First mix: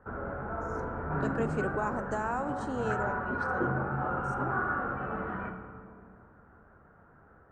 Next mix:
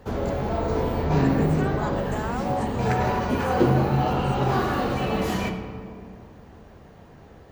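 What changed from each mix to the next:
background: remove four-pole ladder low-pass 1.5 kHz, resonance 80%; master: remove distance through air 73 m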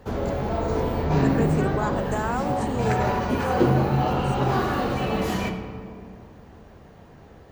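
speech +4.5 dB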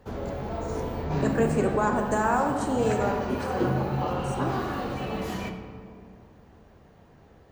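speech: send +11.0 dB; background -6.5 dB

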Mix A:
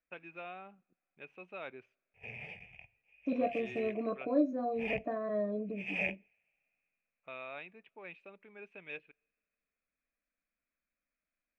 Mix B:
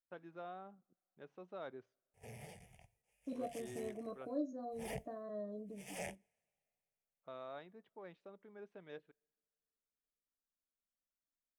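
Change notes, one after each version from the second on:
first voice: add distance through air 230 m; second voice -10.0 dB; master: remove resonant low-pass 2.5 kHz, resonance Q 14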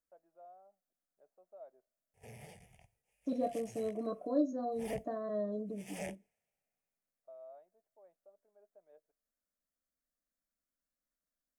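first voice: add band-pass filter 640 Hz, Q 7.9; second voice +8.0 dB

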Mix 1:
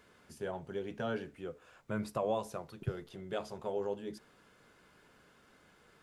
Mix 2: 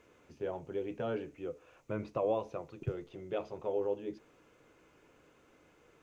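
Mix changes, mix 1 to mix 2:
first voice: add distance through air 300 m; master: add graphic EQ with 31 bands 200 Hz -7 dB, 315 Hz +7 dB, 500 Hz +5 dB, 1.6 kHz -5 dB, 2.5 kHz +6 dB, 6.3 kHz +9 dB

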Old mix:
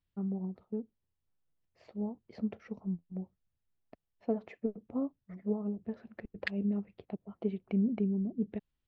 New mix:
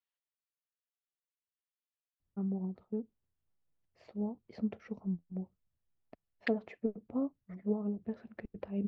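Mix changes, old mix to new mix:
first voice: entry +2.20 s; second voice: add tilt EQ -2 dB/octave

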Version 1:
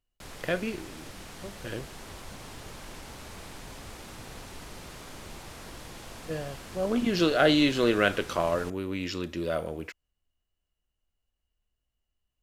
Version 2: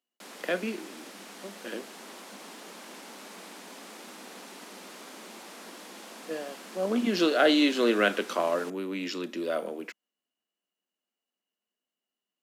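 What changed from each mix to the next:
master: add steep high-pass 190 Hz 72 dB/octave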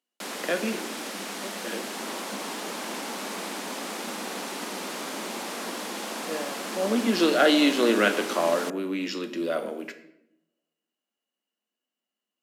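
first sound +11.0 dB; second sound +11.5 dB; reverb: on, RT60 0.80 s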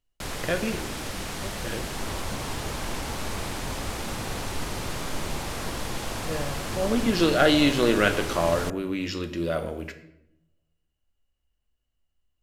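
master: remove steep high-pass 190 Hz 72 dB/octave

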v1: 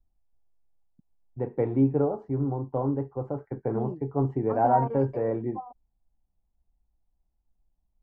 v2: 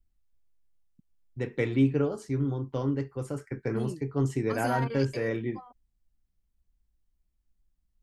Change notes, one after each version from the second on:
master: remove resonant low-pass 810 Hz, resonance Q 3.4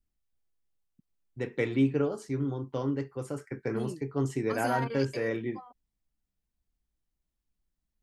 master: add bass shelf 99 Hz -11.5 dB

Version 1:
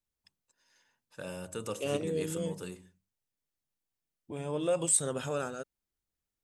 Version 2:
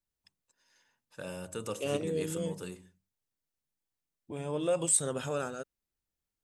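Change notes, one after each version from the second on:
no change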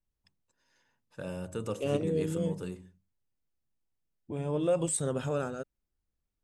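master: add tilt EQ -2 dB/octave

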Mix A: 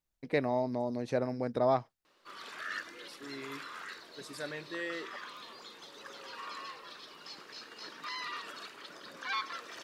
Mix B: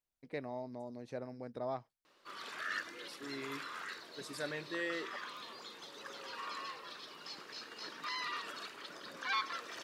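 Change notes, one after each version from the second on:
first voice -11.5 dB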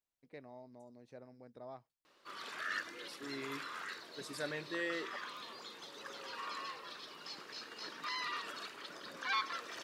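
first voice -10.5 dB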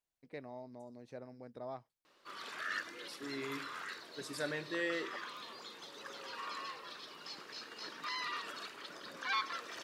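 first voice +5.0 dB; second voice: send +10.0 dB

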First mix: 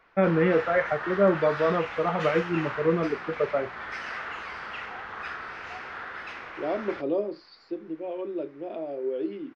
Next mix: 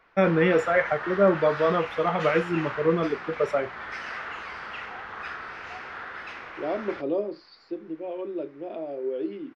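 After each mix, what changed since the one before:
first voice: remove distance through air 450 m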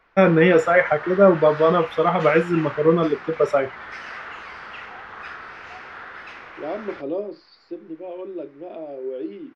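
first voice +6.0 dB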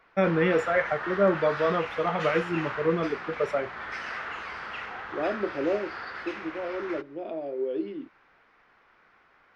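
first voice -8.5 dB; second voice: entry -1.45 s

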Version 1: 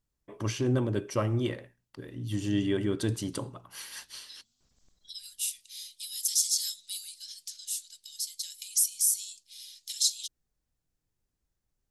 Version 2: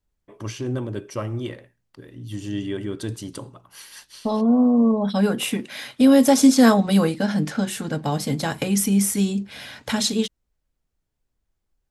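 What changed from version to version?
second voice: remove inverse Chebyshev high-pass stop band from 1 kHz, stop band 70 dB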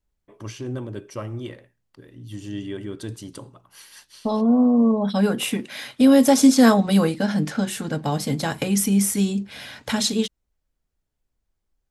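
first voice -3.5 dB

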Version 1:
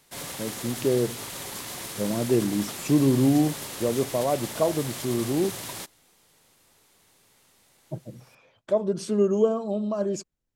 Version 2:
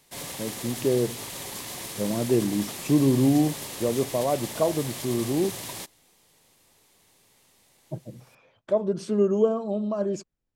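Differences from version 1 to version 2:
speech: add treble shelf 4.9 kHz -8 dB; background: add peaking EQ 1.4 kHz -6 dB 0.34 oct

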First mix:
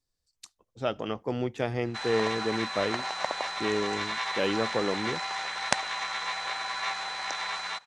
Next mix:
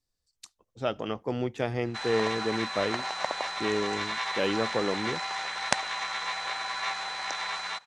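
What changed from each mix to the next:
no change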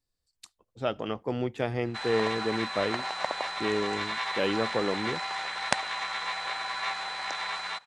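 master: add peaking EQ 6 kHz -6 dB 0.42 oct

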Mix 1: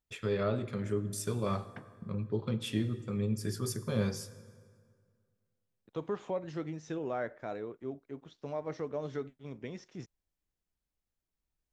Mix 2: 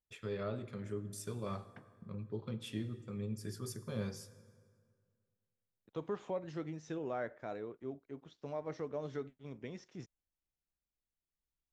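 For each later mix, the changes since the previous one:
first voice -8.0 dB; second voice -3.5 dB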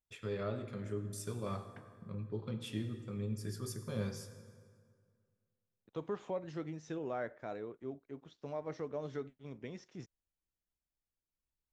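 first voice: send +6.0 dB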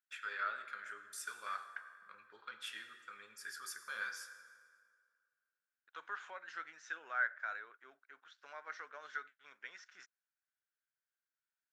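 master: add resonant high-pass 1.5 kHz, resonance Q 6.9

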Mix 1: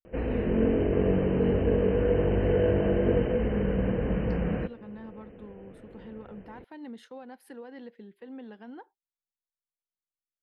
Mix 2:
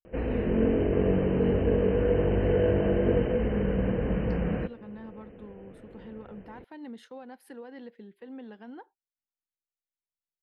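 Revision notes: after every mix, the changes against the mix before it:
no change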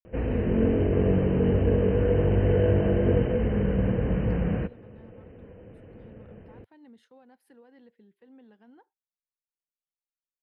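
first voice -6.5 dB; second voice -11.5 dB; master: add peaking EQ 99 Hz +7 dB 1.3 oct

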